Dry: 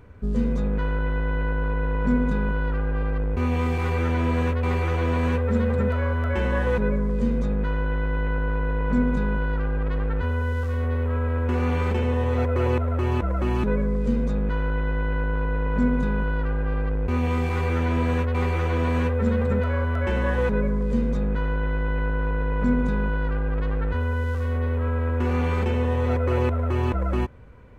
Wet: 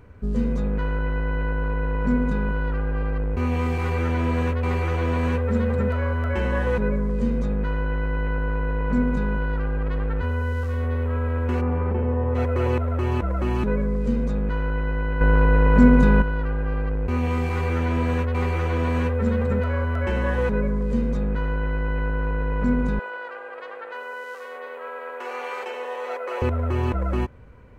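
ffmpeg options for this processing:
ffmpeg -i in.wav -filter_complex "[0:a]asplit=3[link_01][link_02][link_03];[link_01]afade=type=out:start_time=11.6:duration=0.02[link_04];[link_02]lowpass=1200,afade=type=in:start_time=11.6:duration=0.02,afade=type=out:start_time=12.34:duration=0.02[link_05];[link_03]afade=type=in:start_time=12.34:duration=0.02[link_06];[link_04][link_05][link_06]amix=inputs=3:normalize=0,asettb=1/sr,asplit=3[link_07][link_08][link_09];[link_07]atrim=end=22.994[link_10];[link_08]atrim=start=22.99:end=26.42,asetpts=PTS-STARTPTS,afade=type=in:duration=0.004:curve=qsin,afade=type=out:start_time=3.426:duration=0.004:curve=qsin,highpass=frequency=510:width=0.5412,highpass=frequency=510:width=1.3066[link_11];[link_09]atrim=start=26.416[link_12];[link_10][link_11]acrossfade=duration=0.004:curve1=hsin:curve2=qsin[link_13];[link_13][link_12]acrossfade=duration=0.004:curve1=qsin:curve2=hsin,asplit=3[link_14][link_15][link_16];[link_14]atrim=end=15.212[link_17];[link_15]atrim=start=15.208:end=16.222,asetpts=PTS-STARTPTS,volume=8dB[link_18];[link_16]atrim=start=16.218[link_19];[link_17][link_18]acrossfade=duration=0.004:curve1=hsin:curve2=hsin[link_20];[link_20][link_19]acrossfade=duration=0.004:curve1=hsin:curve2=hsin,bandreject=frequency=3500:width=21" out.wav

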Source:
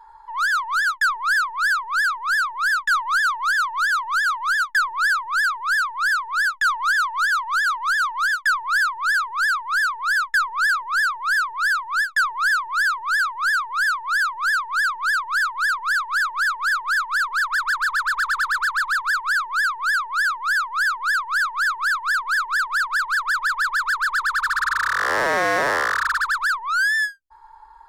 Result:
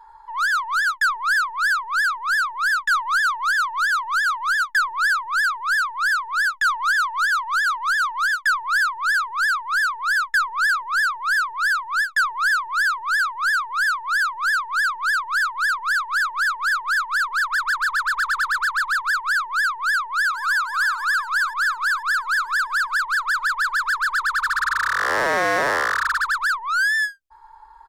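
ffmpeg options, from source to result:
ffmpeg -i in.wav -filter_complex "[0:a]asplit=2[link_01][link_02];[link_02]afade=type=in:start_time=19.81:duration=0.01,afade=type=out:start_time=20.55:duration=0.01,aecho=0:1:490|980|1470|1960|2450|2940|3430|3920:0.266073|0.172947|0.112416|0.0730702|0.0474956|0.0308721|0.0200669|0.0130435[link_03];[link_01][link_03]amix=inputs=2:normalize=0" out.wav

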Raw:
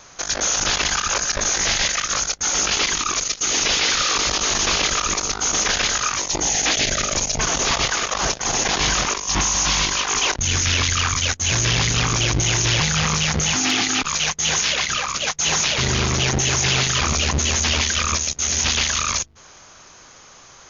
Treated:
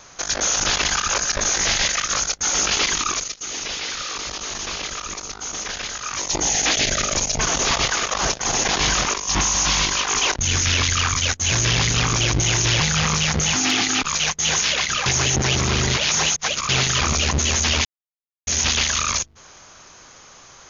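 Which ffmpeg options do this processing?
ffmpeg -i in.wav -filter_complex "[0:a]asplit=7[link_01][link_02][link_03][link_04][link_05][link_06][link_07];[link_01]atrim=end=3.35,asetpts=PTS-STARTPTS,afade=type=out:start_time=3.08:duration=0.27:silence=0.354813[link_08];[link_02]atrim=start=3.35:end=6.03,asetpts=PTS-STARTPTS,volume=-9dB[link_09];[link_03]atrim=start=6.03:end=15.062,asetpts=PTS-STARTPTS,afade=type=in:duration=0.27:silence=0.354813[link_10];[link_04]atrim=start=15.058:end=16.692,asetpts=PTS-STARTPTS,areverse[link_11];[link_05]atrim=start=16.688:end=17.85,asetpts=PTS-STARTPTS,afade=type=out:start_time=1.158:duration=0.004:curve=hsin[link_12];[link_06]atrim=start=17.85:end=18.47,asetpts=PTS-STARTPTS,volume=0[link_13];[link_07]atrim=start=18.47,asetpts=PTS-STARTPTS,afade=type=in:duration=0.004:curve=hsin[link_14];[link_08][link_09][link_10]concat=n=3:v=0:a=1[link_15];[link_15][link_11]acrossfade=duration=0.004:curve1=hsin:curve2=hsin[link_16];[link_12][link_13][link_14]concat=n=3:v=0:a=1[link_17];[link_16][link_17]acrossfade=duration=0.004:curve1=hsin:curve2=hsin" out.wav

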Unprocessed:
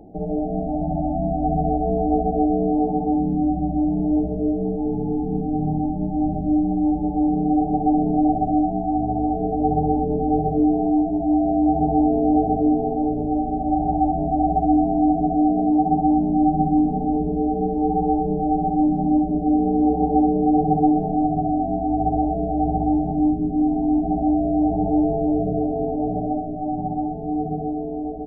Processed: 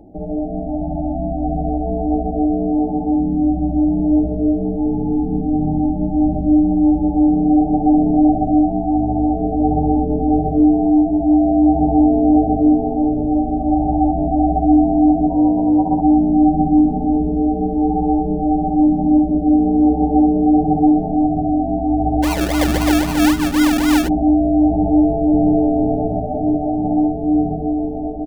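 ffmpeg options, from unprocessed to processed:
ffmpeg -i in.wav -filter_complex "[0:a]asettb=1/sr,asplit=3[link_01][link_02][link_03];[link_01]atrim=end=15.284[link_04];[link_02]atrim=start=15.28:end=16,asetpts=PTS-STARTPTS,afade=type=in:duration=0.004:curve=qsin,afade=type=out:start_time=0.716:duration=0.004:curve=qsin,tremolo=f=190:d=0.333[link_05];[link_03]atrim=start=15.996[link_06];[link_04][link_05]acrossfade=duration=0.004:curve1=hsin:curve2=qsin[link_07];[link_07][link_06]acrossfade=duration=0.004:curve1=qsin:curve2=hsin,asplit=3[link_08][link_09][link_10];[link_08]afade=type=out:start_time=22.22:duration=0.02[link_11];[link_09]acrusher=samples=35:mix=1:aa=0.000001:lfo=1:lforange=21:lforate=3.8,afade=type=in:start_time=22.22:duration=0.02,afade=type=out:start_time=24.07:duration=0.02[link_12];[link_10]afade=type=in:start_time=24.07:duration=0.02[link_13];[link_11][link_12][link_13]amix=inputs=3:normalize=0,asplit=2[link_14][link_15];[link_15]afade=type=in:start_time=24.83:duration=0.01,afade=type=out:start_time=25.57:duration=0.01,aecho=0:1:500|1000|1500|2000|2500|3000|3500|4000|4500|5000|5500|6000:0.668344|0.501258|0.375943|0.281958|0.211468|0.158601|0.118951|0.0892131|0.0669099|0.0501824|0.0376368|0.0282276[link_16];[link_14][link_16]amix=inputs=2:normalize=0,equalizer=frequency=85:width_type=o:width=0.96:gain=5,aecho=1:1:3.4:0.33,dynaudnorm=framelen=650:gausssize=11:maxgain=4.5dB" out.wav

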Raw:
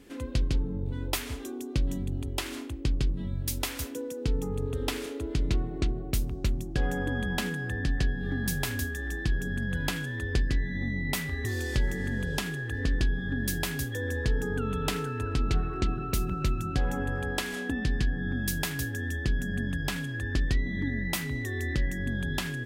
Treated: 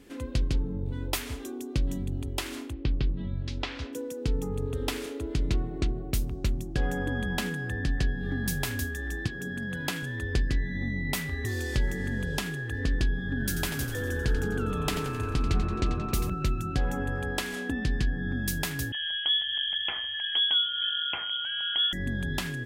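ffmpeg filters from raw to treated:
ffmpeg -i in.wav -filter_complex "[0:a]asettb=1/sr,asplit=3[link_01][link_02][link_03];[link_01]atrim=end=2.734[link_04];[link_02]atrim=start=2.73:end=3.93,asetpts=PTS-STARTPTS,afade=type=in:duration=0.004:curve=qsin,afade=type=out:start_time=1.196:duration=0.004:curve=qsin,lowpass=frequency=4400:width=0.5412,lowpass=frequency=4400:width=1.3066[link_05];[link_03]atrim=start=3.926[link_06];[link_04][link_05]acrossfade=duration=0.004:curve1=hsin:curve2=qsin[link_07];[link_07][link_06]acrossfade=duration=0.004:curve1=qsin:curve2=hsin,asettb=1/sr,asplit=3[link_08][link_09][link_10];[link_08]atrim=end=9.274[link_11];[link_09]atrim=start=9.27:end=10.03,asetpts=PTS-STARTPTS,afade=type=in:duration=0.004:curve=qsin,afade=type=out:start_time=0.756:duration=0.004:curve=qsin,highpass=150[link_12];[link_10]atrim=start=10.026[link_13];[link_11][link_12]acrossfade=duration=0.004:curve1=hsin:curve2=qsin[link_14];[link_14][link_13]acrossfade=duration=0.004:curve1=qsin:curve2=hsin,asettb=1/sr,asplit=3[link_15][link_16][link_17];[link_15]atrim=end=13.284[link_18];[link_16]atrim=start=13.28:end=16.3,asetpts=PTS-STARTPTS,afade=type=in:duration=0.004:curve=qsin,afade=type=out:start_time=3.016:duration=0.004:curve=qsin,asplit=8[link_19][link_20][link_21][link_22][link_23][link_24][link_25][link_26];[link_20]adelay=88,afreqshift=-130,volume=-9dB[link_27];[link_21]adelay=176,afreqshift=-260,volume=-13.7dB[link_28];[link_22]adelay=264,afreqshift=-390,volume=-18.5dB[link_29];[link_23]adelay=352,afreqshift=-520,volume=-23.2dB[link_30];[link_24]adelay=440,afreqshift=-650,volume=-27.9dB[link_31];[link_25]adelay=528,afreqshift=-780,volume=-32.7dB[link_32];[link_26]adelay=616,afreqshift=-910,volume=-37.4dB[link_33];[link_19][link_27][link_28][link_29][link_30][link_31][link_32][link_33]amix=inputs=8:normalize=0,atrim=end_sample=133182[link_34];[link_17]atrim=start=16.296[link_35];[link_18][link_34]acrossfade=duration=0.004:curve1=hsin:curve2=qsin[link_36];[link_36][link_35]acrossfade=duration=0.004:curve1=qsin:curve2=hsin,asettb=1/sr,asplit=3[link_37][link_38][link_39];[link_37]atrim=end=18.924[link_40];[link_38]atrim=start=18.92:end=21.93,asetpts=PTS-STARTPTS,afade=type=in:duration=0.004:curve=qsin,afade=type=out:start_time=3.006:duration=0.004:curve=qsin,lowpass=frequency=2900:width_type=q:width=0.5098,lowpass=frequency=2900:width_type=q:width=0.6013,lowpass=frequency=2900:width_type=q:width=0.9,lowpass=frequency=2900:width_type=q:width=2.563,afreqshift=-3400[link_41];[link_39]atrim=start=21.926[link_42];[link_40][link_41]acrossfade=duration=0.004:curve1=hsin:curve2=qsin[link_43];[link_43][link_42]acrossfade=duration=0.004:curve1=qsin:curve2=hsin" out.wav

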